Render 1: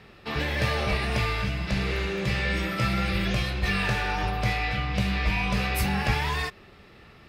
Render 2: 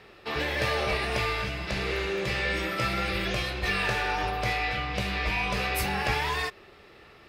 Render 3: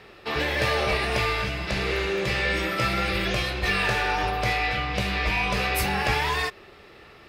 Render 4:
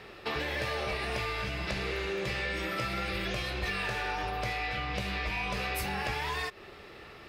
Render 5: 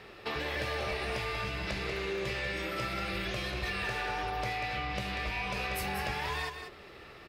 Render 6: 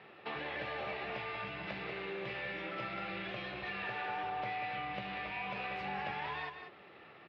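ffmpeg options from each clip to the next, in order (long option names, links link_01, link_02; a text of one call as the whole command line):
ffmpeg -i in.wav -af "lowshelf=frequency=280:width_type=q:width=1.5:gain=-6" out.wav
ffmpeg -i in.wav -af "volume=18.5dB,asoftclip=hard,volume=-18.5dB,volume=3.5dB" out.wav
ffmpeg -i in.wav -af "acompressor=threshold=-31dB:ratio=5" out.wav
ffmpeg -i in.wav -af "aecho=1:1:189:0.398,volume=-2dB" out.wav
ffmpeg -i in.wav -af "highpass=160,equalizer=frequency=160:width_type=q:width=4:gain=4,equalizer=frequency=420:width_type=q:width=4:gain=-3,equalizer=frequency=790:width_type=q:width=4:gain=4,lowpass=frequency=3400:width=0.5412,lowpass=frequency=3400:width=1.3066,volume=-5dB" out.wav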